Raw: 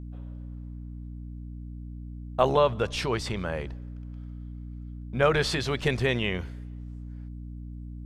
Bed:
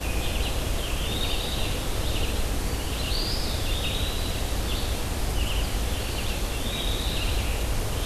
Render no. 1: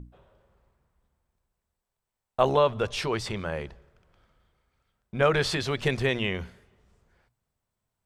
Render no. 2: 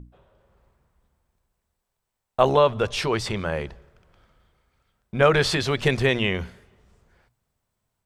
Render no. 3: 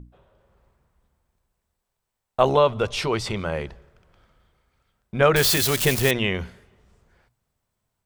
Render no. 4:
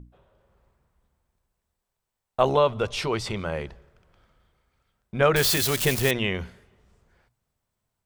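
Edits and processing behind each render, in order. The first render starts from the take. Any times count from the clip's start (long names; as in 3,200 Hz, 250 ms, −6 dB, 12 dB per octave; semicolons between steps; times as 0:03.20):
mains-hum notches 60/120/180/240/300 Hz
automatic gain control gain up to 5 dB
0:02.42–0:03.55: notch filter 1,700 Hz, Q 9.3; 0:05.36–0:06.11: spike at every zero crossing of −14.5 dBFS
level −2.5 dB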